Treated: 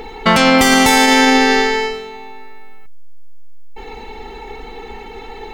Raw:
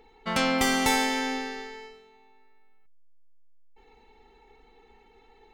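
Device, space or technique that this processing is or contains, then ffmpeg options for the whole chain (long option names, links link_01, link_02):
loud club master: -af "acompressor=threshold=-35dB:ratio=1.5,asoftclip=type=hard:threshold=-18dB,alimiter=level_in=26.5dB:limit=-1dB:release=50:level=0:latency=1,volume=-1dB"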